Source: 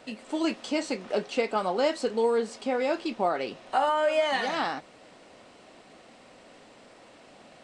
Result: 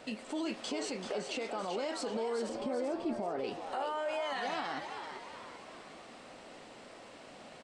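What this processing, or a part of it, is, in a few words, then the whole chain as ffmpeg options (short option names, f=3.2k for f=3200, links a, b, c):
stacked limiters: -filter_complex "[0:a]asettb=1/sr,asplit=3[a][b][c];[a]atrim=end=2.494[d];[b]atrim=start=2.49:end=3.44,asetpts=PTS-STARTPTS,afade=t=in:d=0.004:c=qsin,afade=t=out:st=0.946:d=0.004:c=qsin,tiltshelf=f=1.1k:g=9.5[e];[c]atrim=start=3.436[f];[d][e]acrossfade=d=0.004:c1=hsin:c2=qsin[g];[g][f]acrossfade=d=0.004:c1=qsin:c2=hsin,alimiter=limit=-15.5dB:level=0:latency=1:release=397,alimiter=limit=-22dB:level=0:latency=1:release=111,alimiter=level_in=4.5dB:limit=-24dB:level=0:latency=1:release=30,volume=-4.5dB,asplit=7[h][i][j][k][l][m][n];[i]adelay=386,afreqshift=110,volume=-7.5dB[o];[j]adelay=772,afreqshift=220,volume=-13.9dB[p];[k]adelay=1158,afreqshift=330,volume=-20.3dB[q];[l]adelay=1544,afreqshift=440,volume=-26.6dB[r];[m]adelay=1930,afreqshift=550,volume=-33dB[s];[n]adelay=2316,afreqshift=660,volume=-39.4dB[t];[h][o][p][q][r][s][t]amix=inputs=7:normalize=0"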